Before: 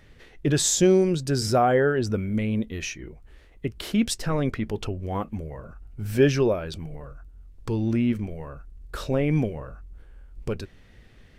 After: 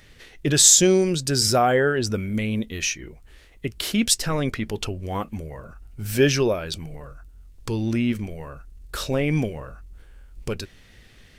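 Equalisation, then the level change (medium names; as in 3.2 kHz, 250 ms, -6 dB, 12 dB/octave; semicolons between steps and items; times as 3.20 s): treble shelf 2.2 kHz +11 dB; 0.0 dB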